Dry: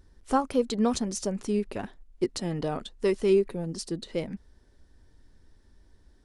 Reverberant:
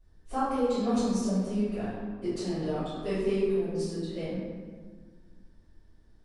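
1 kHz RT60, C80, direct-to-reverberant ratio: 1.6 s, 1.0 dB, -17.5 dB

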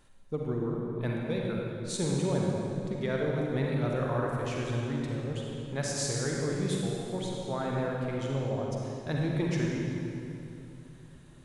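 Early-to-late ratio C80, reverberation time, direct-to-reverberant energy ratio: 0.0 dB, 2.9 s, -2.0 dB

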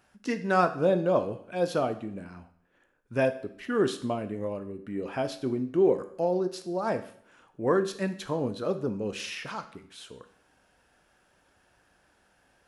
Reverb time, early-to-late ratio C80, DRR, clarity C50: 0.60 s, 16.5 dB, 8.5 dB, 13.0 dB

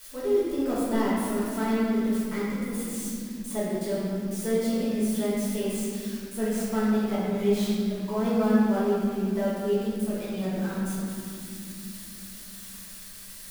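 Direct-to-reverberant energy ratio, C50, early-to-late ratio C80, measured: -10.0 dB, -3.0 dB, -0.5 dB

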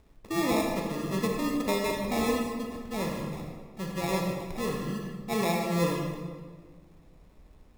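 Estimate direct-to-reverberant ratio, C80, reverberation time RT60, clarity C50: 0.5 dB, 4.0 dB, 1.6 s, 2.0 dB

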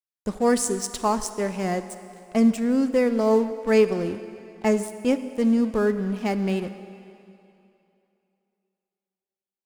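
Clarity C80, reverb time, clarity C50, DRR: 12.5 dB, 2.9 s, 11.5 dB, 11.5 dB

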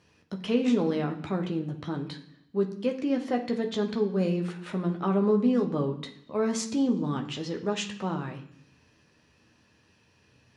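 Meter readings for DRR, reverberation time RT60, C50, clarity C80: 2.0 dB, 0.65 s, 10.5 dB, 14.0 dB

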